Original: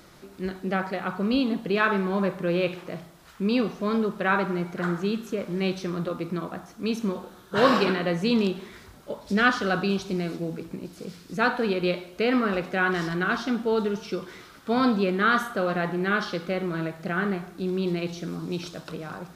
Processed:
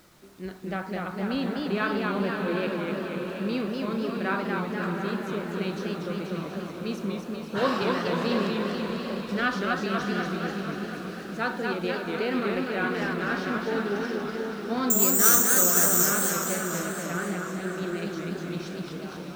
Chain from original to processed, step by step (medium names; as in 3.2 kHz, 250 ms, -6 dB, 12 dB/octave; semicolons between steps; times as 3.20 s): bit crusher 9-bit; on a send: echo that smears into a reverb 633 ms, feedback 48%, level -7.5 dB; 14.90–16.06 s: on the sum: careless resampling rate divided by 6×, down none, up zero stuff; modulated delay 244 ms, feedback 65%, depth 157 cents, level -3.5 dB; trim -6 dB